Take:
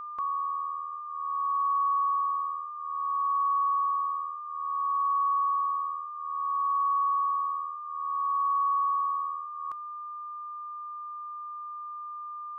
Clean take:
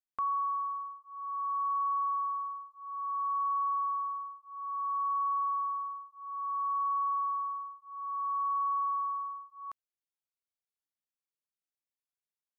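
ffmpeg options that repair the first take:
-af "bandreject=f=1200:w=30,asetnsamples=n=441:p=0,asendcmd='0.92 volume volume -4.5dB',volume=1"

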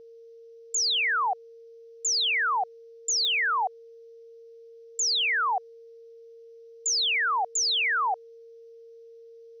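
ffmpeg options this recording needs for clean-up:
-af "adeclick=t=4,bandreject=f=460:w=30,agate=range=0.0891:threshold=0.00891"

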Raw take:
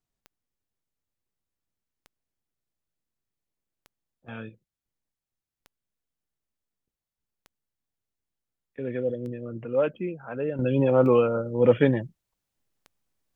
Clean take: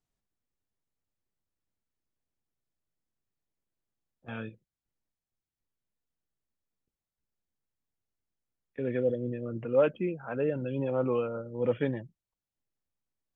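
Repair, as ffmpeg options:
-af "adeclick=t=4,asetnsamples=n=441:p=0,asendcmd='10.59 volume volume -9.5dB',volume=1"

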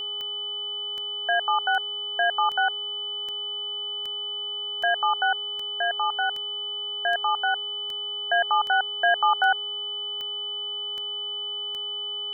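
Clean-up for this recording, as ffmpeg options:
-af "adeclick=t=4,bandreject=f=412.9:t=h:w=4,bandreject=f=825.8:t=h:w=4,bandreject=f=1238.7:t=h:w=4,bandreject=f=3000:w=30"

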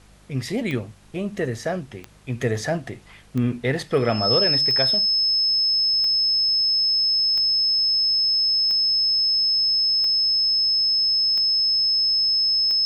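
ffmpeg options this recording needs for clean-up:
-af "adeclick=t=4,bandreject=f=50.7:t=h:w=4,bandreject=f=101.4:t=h:w=4,bandreject=f=152.1:t=h:w=4,bandreject=f=202.8:t=h:w=4,bandreject=f=5200:w=30,agate=range=0.0891:threshold=0.02"

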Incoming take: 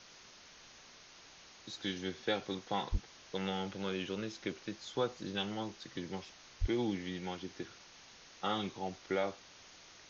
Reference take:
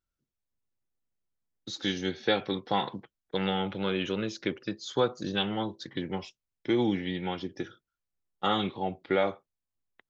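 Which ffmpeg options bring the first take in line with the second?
-filter_complex "[0:a]asplit=3[s0][s1][s2];[s0]afade=t=out:st=2.91:d=0.02[s3];[s1]highpass=f=140:w=0.5412,highpass=f=140:w=1.3066,afade=t=in:st=2.91:d=0.02,afade=t=out:st=3.03:d=0.02[s4];[s2]afade=t=in:st=3.03:d=0.02[s5];[s3][s4][s5]amix=inputs=3:normalize=0,asplit=3[s6][s7][s8];[s6]afade=t=out:st=6.6:d=0.02[s9];[s7]highpass=f=140:w=0.5412,highpass=f=140:w=1.3066,afade=t=in:st=6.6:d=0.02,afade=t=out:st=6.72:d=0.02[s10];[s8]afade=t=in:st=6.72:d=0.02[s11];[s9][s10][s11]amix=inputs=3:normalize=0,afwtdn=0.0025,asetnsamples=n=441:p=0,asendcmd='0.98 volume volume 8dB',volume=1"

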